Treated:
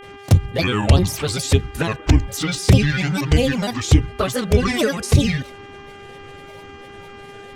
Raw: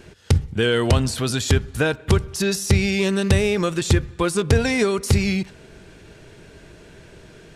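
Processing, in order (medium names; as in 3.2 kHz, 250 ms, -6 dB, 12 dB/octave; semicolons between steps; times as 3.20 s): touch-sensitive flanger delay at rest 10.5 ms, full sweep at -12 dBFS; granulator, spray 20 ms, pitch spread up and down by 7 st; mains buzz 400 Hz, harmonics 8, -46 dBFS -4 dB/octave; trim +5.5 dB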